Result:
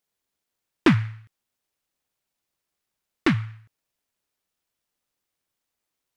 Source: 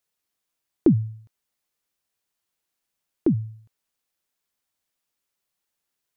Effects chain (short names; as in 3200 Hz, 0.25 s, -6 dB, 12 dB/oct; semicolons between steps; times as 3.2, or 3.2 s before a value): noise-modulated delay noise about 1600 Hz, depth 0.23 ms